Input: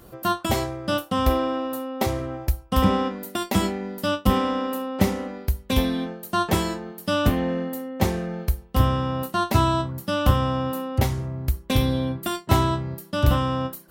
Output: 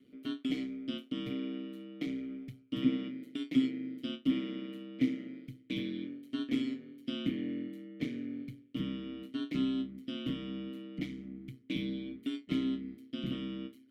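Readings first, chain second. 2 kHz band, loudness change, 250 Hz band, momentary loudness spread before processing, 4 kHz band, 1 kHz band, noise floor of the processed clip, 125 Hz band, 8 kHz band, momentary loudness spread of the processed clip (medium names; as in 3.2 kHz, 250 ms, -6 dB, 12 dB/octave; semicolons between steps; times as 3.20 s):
-16.0 dB, -12.5 dB, -7.5 dB, 8 LU, -13.0 dB, -32.5 dB, -60 dBFS, -21.5 dB, under -25 dB, 10 LU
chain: ring modulator 64 Hz; vowel filter i; band-stop 1.6 kHz, Q 12; trim +2 dB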